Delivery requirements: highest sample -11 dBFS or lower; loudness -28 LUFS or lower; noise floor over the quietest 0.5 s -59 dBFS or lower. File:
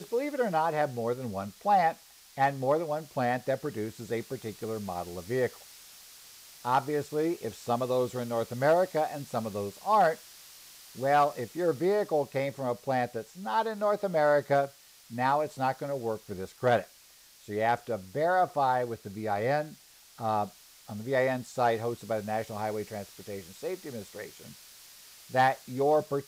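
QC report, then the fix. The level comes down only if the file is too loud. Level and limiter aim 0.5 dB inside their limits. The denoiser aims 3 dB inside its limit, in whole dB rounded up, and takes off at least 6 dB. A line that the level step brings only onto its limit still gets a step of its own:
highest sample -15.5 dBFS: pass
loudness -30.0 LUFS: pass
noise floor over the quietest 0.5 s -57 dBFS: fail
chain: noise reduction 6 dB, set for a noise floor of -57 dBFS

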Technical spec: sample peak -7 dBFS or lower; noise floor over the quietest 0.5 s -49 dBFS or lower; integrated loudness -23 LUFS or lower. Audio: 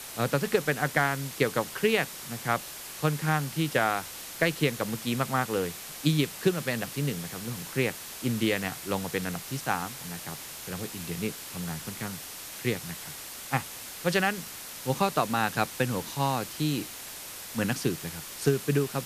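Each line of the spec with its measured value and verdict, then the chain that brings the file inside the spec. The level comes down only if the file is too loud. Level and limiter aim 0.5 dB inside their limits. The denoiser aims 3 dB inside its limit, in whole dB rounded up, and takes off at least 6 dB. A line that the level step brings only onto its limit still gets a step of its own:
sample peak -10.5 dBFS: pass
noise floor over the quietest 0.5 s -41 dBFS: fail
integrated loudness -30.0 LUFS: pass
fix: noise reduction 11 dB, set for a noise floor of -41 dBFS

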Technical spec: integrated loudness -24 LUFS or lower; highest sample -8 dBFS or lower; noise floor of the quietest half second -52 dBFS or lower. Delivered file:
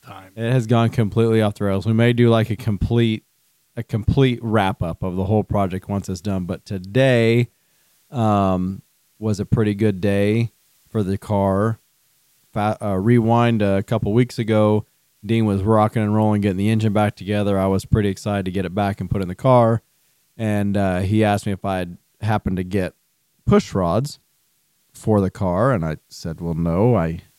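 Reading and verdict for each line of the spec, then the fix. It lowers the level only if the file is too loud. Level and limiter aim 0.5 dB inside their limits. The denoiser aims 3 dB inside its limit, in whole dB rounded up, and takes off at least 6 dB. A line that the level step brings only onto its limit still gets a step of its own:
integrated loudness -20.0 LUFS: fail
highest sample -3.0 dBFS: fail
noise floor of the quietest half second -65 dBFS: pass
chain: trim -4.5 dB; peak limiter -8.5 dBFS

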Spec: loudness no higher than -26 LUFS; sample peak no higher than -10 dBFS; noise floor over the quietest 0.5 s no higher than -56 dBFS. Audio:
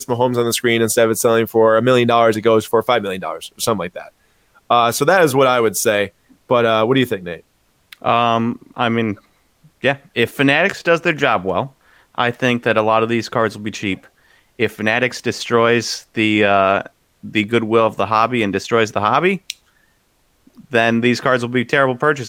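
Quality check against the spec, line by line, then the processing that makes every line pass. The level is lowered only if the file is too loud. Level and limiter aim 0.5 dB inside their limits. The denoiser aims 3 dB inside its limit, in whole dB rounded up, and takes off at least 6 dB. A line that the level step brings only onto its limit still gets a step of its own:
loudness -16.5 LUFS: fail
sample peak -2.5 dBFS: fail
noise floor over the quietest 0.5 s -60 dBFS: pass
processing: trim -10 dB

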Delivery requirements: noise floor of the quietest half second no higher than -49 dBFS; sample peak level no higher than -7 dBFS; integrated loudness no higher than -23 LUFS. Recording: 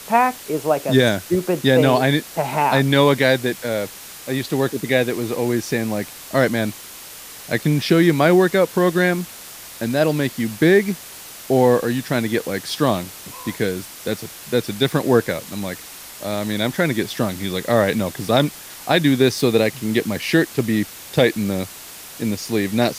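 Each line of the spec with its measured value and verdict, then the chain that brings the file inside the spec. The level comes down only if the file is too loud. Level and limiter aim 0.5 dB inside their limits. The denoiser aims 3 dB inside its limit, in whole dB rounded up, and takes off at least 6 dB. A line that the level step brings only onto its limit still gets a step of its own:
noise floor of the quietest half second -38 dBFS: fail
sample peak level -3.0 dBFS: fail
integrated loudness -19.5 LUFS: fail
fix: noise reduction 10 dB, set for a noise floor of -38 dBFS; trim -4 dB; peak limiter -7.5 dBFS

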